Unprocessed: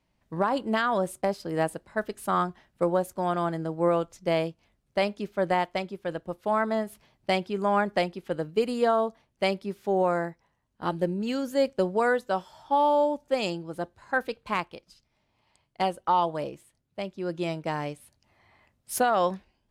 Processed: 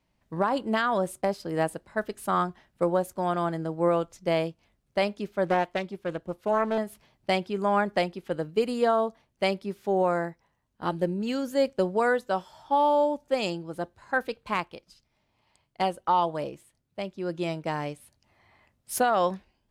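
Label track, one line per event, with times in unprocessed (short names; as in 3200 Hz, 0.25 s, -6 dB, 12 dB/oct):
5.440000	6.780000	Doppler distortion depth 0.31 ms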